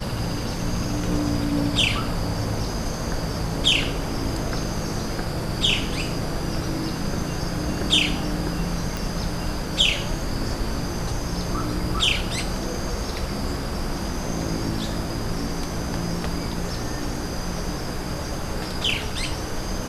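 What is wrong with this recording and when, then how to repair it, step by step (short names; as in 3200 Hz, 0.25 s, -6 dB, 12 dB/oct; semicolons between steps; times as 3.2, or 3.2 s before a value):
8.97 pop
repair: de-click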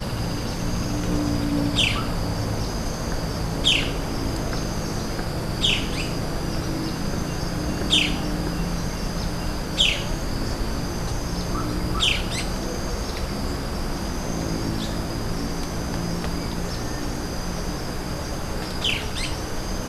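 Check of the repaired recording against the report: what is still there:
8.97 pop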